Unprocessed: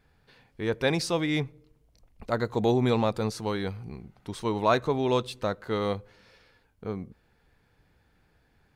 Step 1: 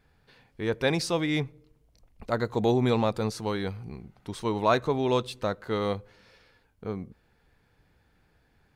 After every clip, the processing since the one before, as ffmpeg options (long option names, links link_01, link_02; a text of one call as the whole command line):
ffmpeg -i in.wav -af anull out.wav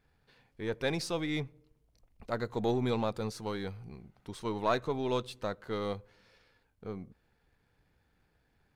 ffmpeg -i in.wav -af "aeval=exprs='if(lt(val(0),0),0.708*val(0),val(0))':channel_layout=same,volume=-5dB" out.wav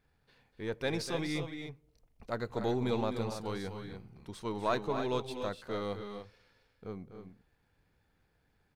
ffmpeg -i in.wav -af "aecho=1:1:247.8|291.5:0.316|0.355,volume=-2dB" out.wav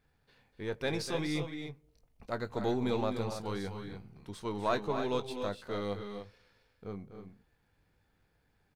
ffmpeg -i in.wav -filter_complex "[0:a]asplit=2[link_01][link_02];[link_02]adelay=20,volume=-11dB[link_03];[link_01][link_03]amix=inputs=2:normalize=0" out.wav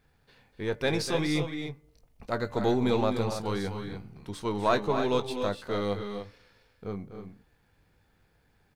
ffmpeg -i in.wav -af "bandreject=frequency=291.5:width_type=h:width=4,bandreject=frequency=583:width_type=h:width=4,bandreject=frequency=874.5:width_type=h:width=4,bandreject=frequency=1166:width_type=h:width=4,bandreject=frequency=1457.5:width_type=h:width=4,bandreject=frequency=1749:width_type=h:width=4,bandreject=frequency=2040.5:width_type=h:width=4,volume=6dB" out.wav